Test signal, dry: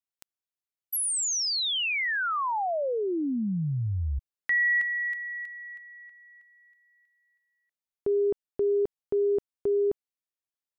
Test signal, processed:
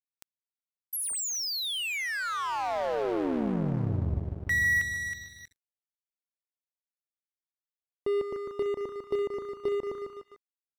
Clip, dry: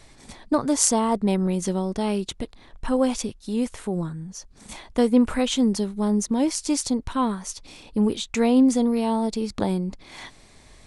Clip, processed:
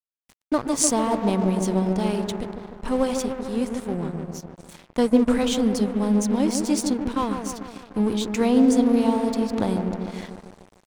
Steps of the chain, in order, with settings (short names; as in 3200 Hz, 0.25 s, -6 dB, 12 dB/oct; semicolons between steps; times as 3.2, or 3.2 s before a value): dark delay 0.149 s, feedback 72%, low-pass 980 Hz, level -4.5 dB; crossover distortion -35 dBFS